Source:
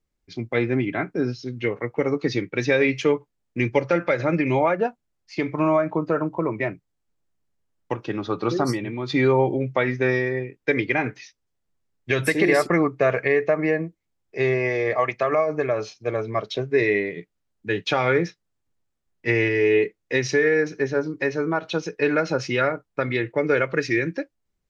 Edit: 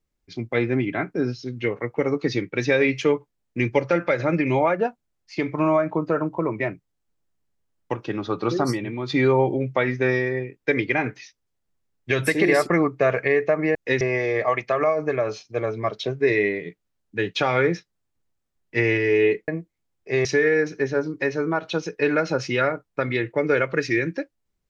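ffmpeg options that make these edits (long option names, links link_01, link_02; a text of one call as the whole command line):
ffmpeg -i in.wav -filter_complex "[0:a]asplit=5[link_01][link_02][link_03][link_04][link_05];[link_01]atrim=end=13.752[link_06];[link_02]atrim=start=19.988:end=20.252[link_07];[link_03]atrim=start=14.518:end=19.992[link_08];[link_04]atrim=start=13.748:end=14.522[link_09];[link_05]atrim=start=20.248[link_10];[link_06][link_07]acrossfade=duration=0.004:curve1=hsin:curve2=hsin[link_11];[link_11][link_08]acrossfade=duration=0.004:curve1=hsin:curve2=hsin[link_12];[link_12][link_09]acrossfade=duration=0.004:curve1=hsin:curve2=hsin[link_13];[link_13][link_10]acrossfade=duration=0.004:curve1=hsin:curve2=hsin" out.wav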